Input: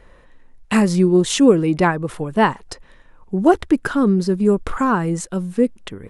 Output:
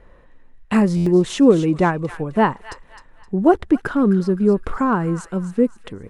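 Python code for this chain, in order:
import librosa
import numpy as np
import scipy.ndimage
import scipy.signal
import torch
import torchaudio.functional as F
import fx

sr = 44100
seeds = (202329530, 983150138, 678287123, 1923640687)

y = fx.high_shelf(x, sr, hz=2600.0, db=-11.0)
y = fx.echo_wet_highpass(y, sr, ms=260, feedback_pct=38, hz=1700.0, wet_db=-9.5)
y = fx.buffer_glitch(y, sr, at_s=(0.96,), block=512, repeats=8)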